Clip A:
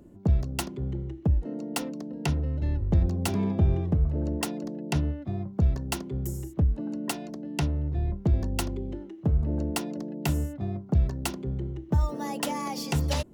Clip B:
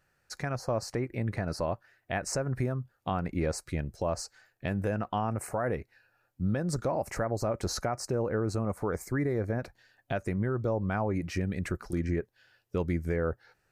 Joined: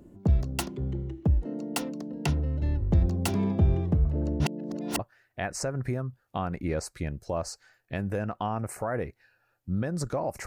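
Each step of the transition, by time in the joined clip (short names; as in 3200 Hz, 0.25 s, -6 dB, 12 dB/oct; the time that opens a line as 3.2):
clip A
4.4–4.99 reverse
4.99 switch to clip B from 1.71 s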